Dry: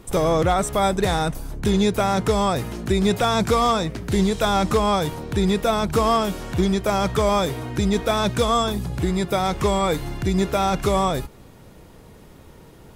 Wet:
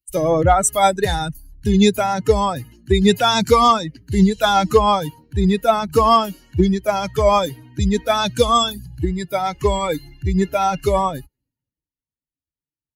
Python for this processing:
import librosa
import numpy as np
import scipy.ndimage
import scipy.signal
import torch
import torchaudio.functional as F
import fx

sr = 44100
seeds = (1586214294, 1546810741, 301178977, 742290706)

y = fx.bin_expand(x, sr, power=2.0)
y = fx.highpass(y, sr, hz=70.0, slope=6)
y = fx.band_widen(y, sr, depth_pct=70)
y = y * 10.0 ** (8.5 / 20.0)